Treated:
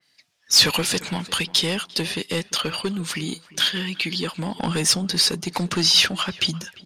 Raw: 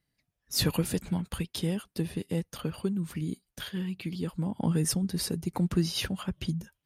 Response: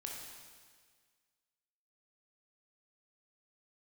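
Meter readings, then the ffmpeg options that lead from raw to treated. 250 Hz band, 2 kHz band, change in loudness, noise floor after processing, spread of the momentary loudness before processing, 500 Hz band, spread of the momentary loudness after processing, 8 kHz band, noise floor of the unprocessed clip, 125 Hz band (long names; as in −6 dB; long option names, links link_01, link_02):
+2.0 dB, +16.5 dB, +10.5 dB, −64 dBFS, 8 LU, +6.5 dB, 12 LU, +12.5 dB, −83 dBFS, +0.5 dB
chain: -filter_complex "[0:a]highpass=88,asplit=2[link_01][link_02];[link_02]highpass=frequency=720:poles=1,volume=20dB,asoftclip=type=tanh:threshold=-14dB[link_03];[link_01][link_03]amix=inputs=2:normalize=0,lowpass=frequency=4400:poles=1,volume=-6dB,equalizer=frequency=5000:width=0.53:gain=13,asplit=2[link_04][link_05];[link_05]adelay=347,lowpass=frequency=2000:poles=1,volume=-18.5dB,asplit=2[link_06][link_07];[link_07]adelay=347,lowpass=frequency=2000:poles=1,volume=0.33,asplit=2[link_08][link_09];[link_09]adelay=347,lowpass=frequency=2000:poles=1,volume=0.33[link_10];[link_04][link_06][link_08][link_10]amix=inputs=4:normalize=0,adynamicequalizer=threshold=0.0282:dfrequency=2600:dqfactor=0.7:tfrequency=2600:tqfactor=0.7:attack=5:release=100:ratio=0.375:range=2:mode=cutabove:tftype=highshelf"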